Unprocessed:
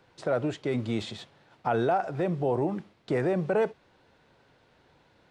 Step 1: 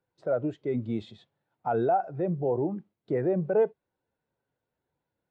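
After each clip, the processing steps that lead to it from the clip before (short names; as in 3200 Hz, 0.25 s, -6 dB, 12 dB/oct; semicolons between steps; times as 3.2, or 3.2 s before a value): spectral expander 1.5:1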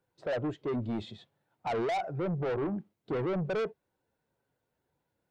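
soft clip -31.5 dBFS, distortion -7 dB; gain +3 dB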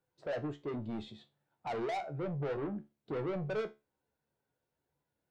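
resonator 72 Hz, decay 0.24 s, harmonics all, mix 70%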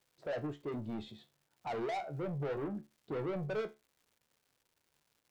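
crackle 330/s -59 dBFS; gain -1 dB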